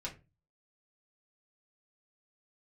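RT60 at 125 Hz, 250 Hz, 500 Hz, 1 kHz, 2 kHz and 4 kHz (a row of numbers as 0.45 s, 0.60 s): 0.50 s, 0.45 s, 0.30 s, 0.25 s, 0.25 s, 0.20 s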